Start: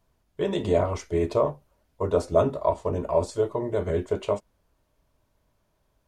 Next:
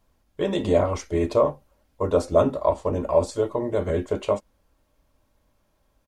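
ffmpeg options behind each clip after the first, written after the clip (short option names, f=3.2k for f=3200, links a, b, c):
-af "aecho=1:1:3.7:0.33,volume=2.5dB"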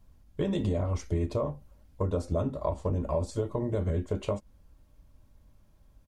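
-af "bass=f=250:g=13,treble=f=4k:g=2,acompressor=threshold=-23dB:ratio=6,volume=-3dB"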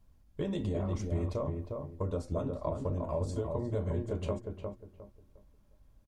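-filter_complex "[0:a]asplit=2[a][b];[b]adelay=356,lowpass=f=1.4k:p=1,volume=-4dB,asplit=2[c][d];[d]adelay=356,lowpass=f=1.4k:p=1,volume=0.28,asplit=2[e][f];[f]adelay=356,lowpass=f=1.4k:p=1,volume=0.28,asplit=2[g][h];[h]adelay=356,lowpass=f=1.4k:p=1,volume=0.28[i];[a][c][e][g][i]amix=inputs=5:normalize=0,volume=-5dB"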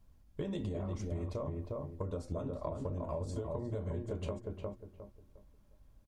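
-af "acompressor=threshold=-34dB:ratio=6"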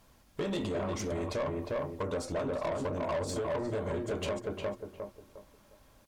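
-filter_complex "[0:a]asplit=2[a][b];[b]highpass=f=720:p=1,volume=23dB,asoftclip=type=tanh:threshold=-24dB[c];[a][c]amix=inputs=2:normalize=0,lowpass=f=2.8k:p=1,volume=-6dB,aemphasis=mode=production:type=cd"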